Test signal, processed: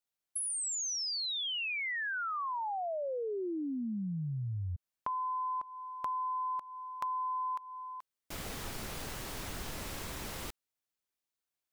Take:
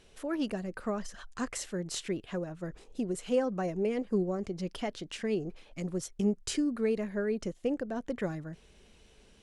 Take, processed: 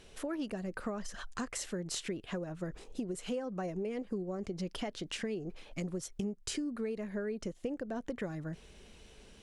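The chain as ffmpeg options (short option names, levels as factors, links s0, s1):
-af "acompressor=threshold=0.0126:ratio=6,volume=1.5"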